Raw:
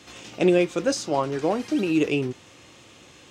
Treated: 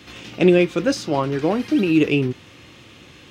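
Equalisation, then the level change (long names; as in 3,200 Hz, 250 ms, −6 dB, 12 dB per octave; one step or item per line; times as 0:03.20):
parametric band 710 Hz −7.5 dB 2 octaves
parametric band 7,500 Hz −12.5 dB 1.2 octaves
+8.5 dB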